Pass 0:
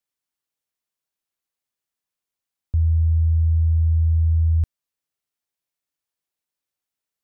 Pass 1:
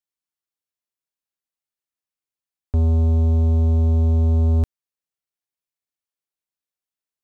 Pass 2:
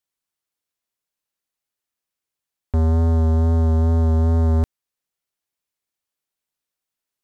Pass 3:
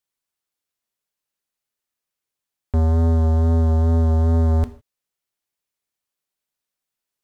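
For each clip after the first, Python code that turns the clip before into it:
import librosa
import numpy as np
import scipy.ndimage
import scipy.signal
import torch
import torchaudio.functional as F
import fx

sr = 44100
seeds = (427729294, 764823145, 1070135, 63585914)

y1 = fx.rider(x, sr, range_db=10, speed_s=0.5)
y1 = fx.leveller(y1, sr, passes=3)
y2 = fx.rider(y1, sr, range_db=10, speed_s=2.0)
y2 = fx.wow_flutter(y2, sr, seeds[0], rate_hz=2.1, depth_cents=24.0)
y2 = 10.0 ** (-21.0 / 20.0) * np.tanh(y2 / 10.0 ** (-21.0 / 20.0))
y2 = F.gain(torch.from_numpy(y2), 6.0).numpy()
y3 = fx.rev_gated(y2, sr, seeds[1], gate_ms=180, shape='falling', drr_db=11.5)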